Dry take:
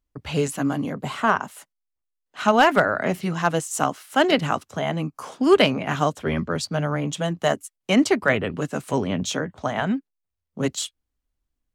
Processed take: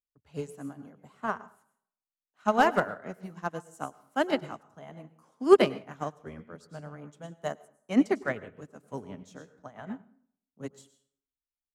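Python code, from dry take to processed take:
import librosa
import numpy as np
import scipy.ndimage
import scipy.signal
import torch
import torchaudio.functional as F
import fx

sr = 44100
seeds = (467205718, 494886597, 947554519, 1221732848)

y = fx.peak_eq(x, sr, hz=3100.0, db=-6.5, octaves=1.3)
y = fx.rev_plate(y, sr, seeds[0], rt60_s=0.64, hf_ratio=0.65, predelay_ms=90, drr_db=8.0)
y = fx.upward_expand(y, sr, threshold_db=-29.0, expansion=2.5)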